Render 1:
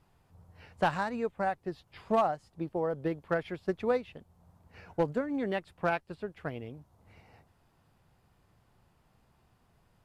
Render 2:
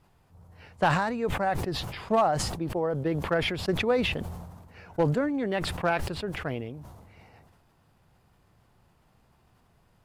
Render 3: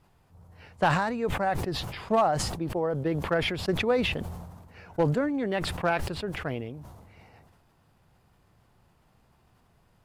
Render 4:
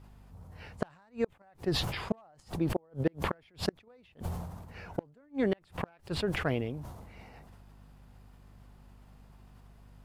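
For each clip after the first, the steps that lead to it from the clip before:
sustainer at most 39 dB/s; gain +3 dB
nothing audible
hum 50 Hz, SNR 27 dB; flipped gate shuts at -19 dBFS, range -36 dB; gain +2 dB

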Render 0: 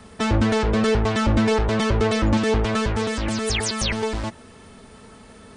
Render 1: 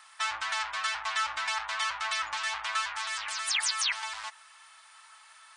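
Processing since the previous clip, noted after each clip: inverse Chebyshev high-pass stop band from 490 Hz, stop band 40 dB; gain -2.5 dB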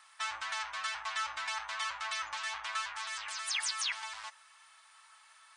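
resonator 560 Hz, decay 0.36 s, mix 60%; gain +2 dB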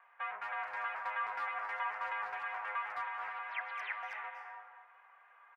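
mistuned SSB -140 Hz 360–2400 Hz; speakerphone echo 0.21 s, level -8 dB; reverb RT60 1.2 s, pre-delay 0.233 s, DRR 5.5 dB; gain -1.5 dB

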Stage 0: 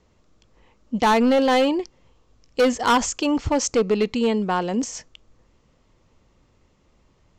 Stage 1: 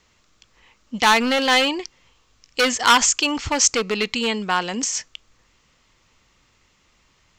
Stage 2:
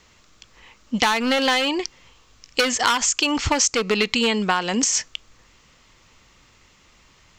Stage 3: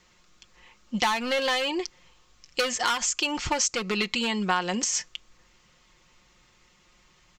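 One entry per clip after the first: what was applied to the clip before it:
EQ curve 560 Hz 0 dB, 1400 Hz +11 dB, 2300 Hz +14 dB; gain -4.5 dB
compressor 8:1, threshold -22 dBFS, peak gain reduction 13.5 dB; gain +6 dB
comb 5.6 ms, depth 54%; gain -7 dB

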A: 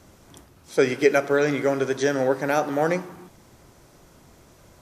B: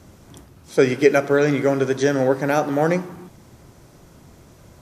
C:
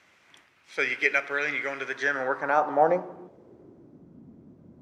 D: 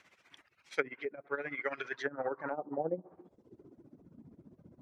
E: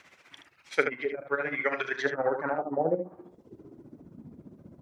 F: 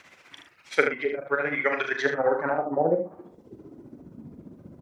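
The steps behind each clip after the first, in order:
bell 120 Hz +6 dB 2.8 oct; gain +1.5 dB
band-pass sweep 2200 Hz -> 240 Hz, 1.81–4.03; gain +4 dB
reverb removal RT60 0.89 s; treble ducked by the level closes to 330 Hz, closed at -21.5 dBFS; tremolo 15 Hz, depth 77%
early reflections 37 ms -14 dB, 76 ms -7 dB; gain +7 dB
doubler 41 ms -9 dB; gain +3.5 dB

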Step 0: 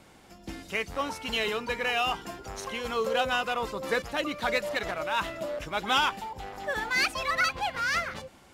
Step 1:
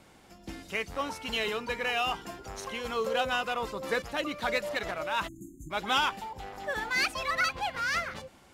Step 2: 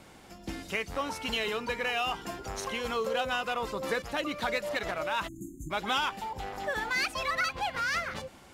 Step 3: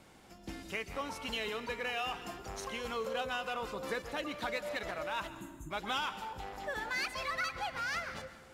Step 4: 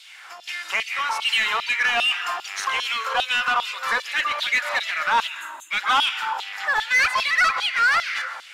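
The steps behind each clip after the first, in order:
spectral delete 5.28–5.71, 370–6200 Hz; gain -2 dB
compressor 2:1, threshold -35 dBFS, peak gain reduction 7 dB; gain +4 dB
plate-style reverb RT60 1.2 s, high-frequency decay 0.75×, pre-delay 0.115 s, DRR 12 dB; gain -6 dB
LFO high-pass saw down 2.5 Hz 800–3700 Hz; overdrive pedal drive 15 dB, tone 4200 Hz, clips at -19.5 dBFS; gain +8.5 dB

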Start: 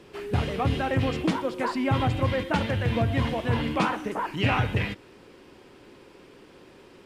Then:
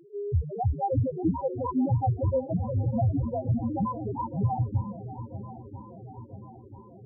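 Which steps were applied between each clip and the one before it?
loudest bins only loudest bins 1; reverb removal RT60 0.83 s; swung echo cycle 0.988 s, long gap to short 1.5:1, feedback 56%, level -14 dB; gain +8 dB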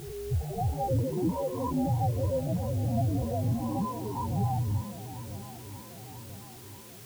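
spectral swells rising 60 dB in 1.23 s; in parallel at -6 dB: requantised 6-bit, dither triangular; on the sum: gain -8.5 dB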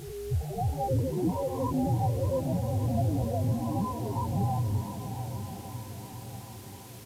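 downsampling 32000 Hz; swung echo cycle 1.155 s, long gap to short 1.5:1, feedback 37%, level -11 dB

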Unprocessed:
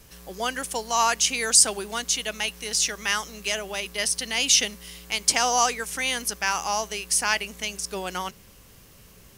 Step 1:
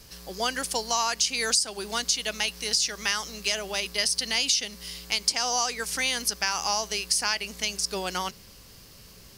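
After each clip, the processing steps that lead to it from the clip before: bell 4700 Hz +10 dB 0.54 oct; compressor 8:1, threshold -21 dBFS, peak gain reduction 14 dB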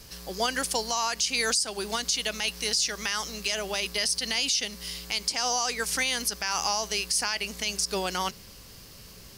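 limiter -17 dBFS, peak gain reduction 8 dB; gain +2 dB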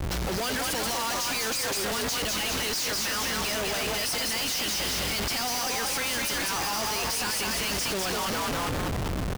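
frequency-shifting echo 0.199 s, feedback 45%, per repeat +44 Hz, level -4 dB; Schmitt trigger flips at -40.5 dBFS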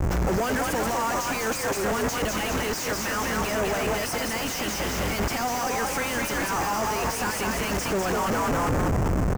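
Wiener smoothing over 15 samples; gain +6.5 dB

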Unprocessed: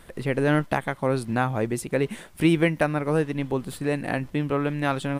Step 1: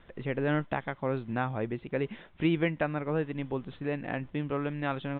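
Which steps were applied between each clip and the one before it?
steep low-pass 3700 Hz 96 dB/oct; gain -7 dB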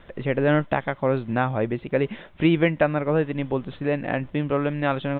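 bell 580 Hz +4.5 dB 0.3 oct; gain +7.5 dB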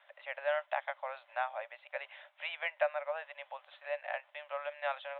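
rippled Chebyshev high-pass 570 Hz, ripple 3 dB; gain -8.5 dB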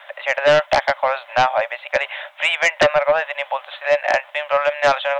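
sine folder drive 10 dB, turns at -17 dBFS; gain +8.5 dB

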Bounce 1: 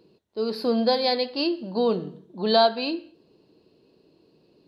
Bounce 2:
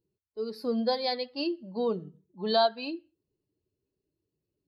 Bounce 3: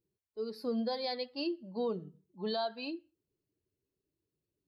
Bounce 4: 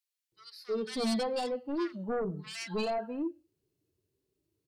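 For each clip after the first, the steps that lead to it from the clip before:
per-bin expansion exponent 1.5; gain -4.5 dB
limiter -21.5 dBFS, peak gain reduction 8 dB; gain -4 dB
sine folder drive 7 dB, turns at -25 dBFS; harmonic-percussive split percussive -9 dB; bands offset in time highs, lows 0.32 s, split 1600 Hz; gain -2.5 dB

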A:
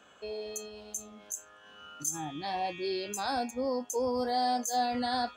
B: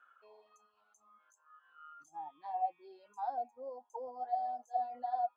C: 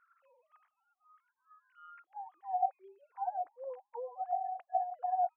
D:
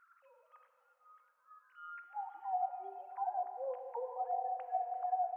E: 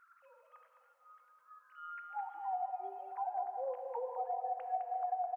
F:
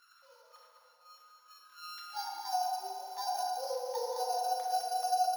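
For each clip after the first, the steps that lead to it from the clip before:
reverb removal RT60 1.8 s; auto-wah 660–1400 Hz, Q 11, down, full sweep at -28.5 dBFS; gain +4 dB
sine-wave speech; gain +2 dB
compressor 2:1, threshold -41 dBFS, peak gain reduction 9.5 dB; plate-style reverb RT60 3.5 s, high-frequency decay 0.95×, DRR 6 dB; gain +3 dB
compressor, threshold -36 dBFS, peak gain reduction 7 dB; on a send: echo 0.21 s -7.5 dB; on the sum: gain +2 dB
sample sorter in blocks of 8 samples; FDN reverb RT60 1.5 s, low-frequency decay 0.75×, high-frequency decay 0.65×, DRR -1 dB

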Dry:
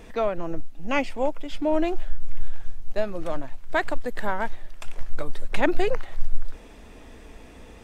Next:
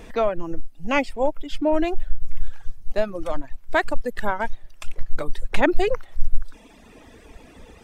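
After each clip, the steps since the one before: reverb removal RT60 1.5 s; gain +3.5 dB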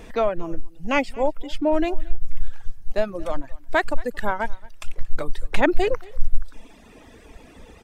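echo 0.227 s -23 dB

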